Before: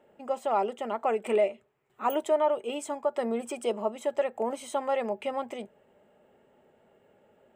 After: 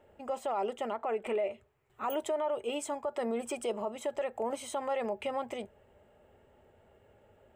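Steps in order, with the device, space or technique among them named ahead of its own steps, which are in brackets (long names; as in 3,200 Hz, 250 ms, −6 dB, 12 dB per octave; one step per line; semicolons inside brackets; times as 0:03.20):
car stereo with a boomy subwoofer (low shelf with overshoot 120 Hz +12.5 dB, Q 1.5; brickwall limiter −24.5 dBFS, peak gain reduction 9 dB)
0:00.96–0:01.51: bass and treble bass −2 dB, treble −9 dB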